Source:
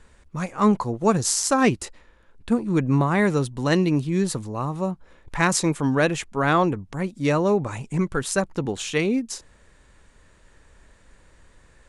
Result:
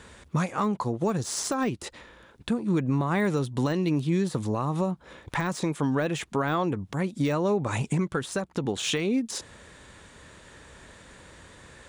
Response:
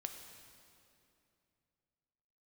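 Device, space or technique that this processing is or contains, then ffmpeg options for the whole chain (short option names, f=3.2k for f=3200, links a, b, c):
broadcast voice chain: -af "highpass=83,deesser=0.75,acompressor=threshold=-30dB:ratio=4,equalizer=f=3.5k:t=o:w=0.31:g=4.5,alimiter=level_in=1.5dB:limit=-24dB:level=0:latency=1:release=292,volume=-1.5dB,volume=8.5dB"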